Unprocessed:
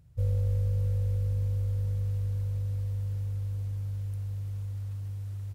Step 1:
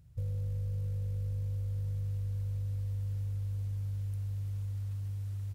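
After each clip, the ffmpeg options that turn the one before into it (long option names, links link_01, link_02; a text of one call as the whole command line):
ffmpeg -i in.wav -af "equalizer=frequency=590:width=0.41:gain=-3.5,alimiter=level_in=2dB:limit=-24dB:level=0:latency=1:release=11,volume=-2dB,acompressor=threshold=-32dB:ratio=6" out.wav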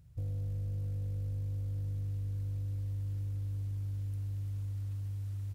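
ffmpeg -i in.wav -af "asoftclip=type=tanh:threshold=-29.5dB" out.wav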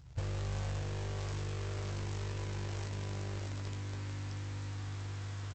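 ffmpeg -i in.wav -filter_complex "[0:a]aresample=16000,acrusher=bits=3:mode=log:mix=0:aa=0.000001,aresample=44100,asplit=2[link_01][link_02];[link_02]adelay=15,volume=-7dB[link_03];[link_01][link_03]amix=inputs=2:normalize=0,aecho=1:1:639:0.355,volume=3dB" out.wav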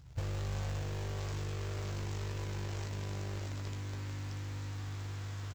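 ffmpeg -i in.wav -af "acrusher=bits=7:mode=log:mix=0:aa=0.000001" out.wav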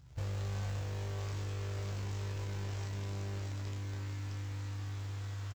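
ffmpeg -i in.wav -filter_complex "[0:a]asplit=2[link_01][link_02];[link_02]adelay=30,volume=-5dB[link_03];[link_01][link_03]amix=inputs=2:normalize=0,volume=-3dB" out.wav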